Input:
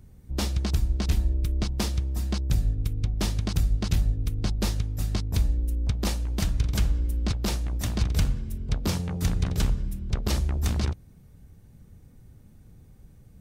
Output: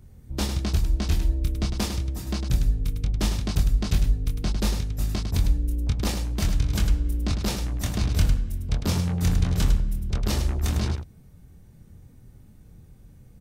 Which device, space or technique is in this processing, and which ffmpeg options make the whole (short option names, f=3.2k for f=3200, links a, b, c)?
slapback doubling: -filter_complex "[0:a]asplit=3[a][b][c];[b]adelay=24,volume=-5dB[d];[c]adelay=103,volume=-7dB[e];[a][d][e]amix=inputs=3:normalize=0"